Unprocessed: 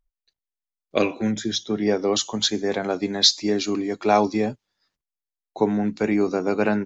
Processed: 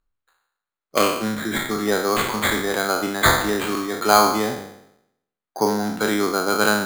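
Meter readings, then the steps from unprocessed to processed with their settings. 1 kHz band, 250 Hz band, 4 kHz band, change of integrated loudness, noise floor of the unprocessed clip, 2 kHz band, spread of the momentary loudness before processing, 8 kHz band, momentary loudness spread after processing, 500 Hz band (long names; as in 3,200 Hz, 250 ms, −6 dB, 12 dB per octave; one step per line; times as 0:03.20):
+7.0 dB, −1.0 dB, −2.0 dB, +2.0 dB, below −85 dBFS, +10.0 dB, 8 LU, can't be measured, 8 LU, +1.0 dB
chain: peak hold with a decay on every bin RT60 0.77 s
parametric band 1,300 Hz +14.5 dB 0.91 octaves
decimation without filtering 8×
level −3 dB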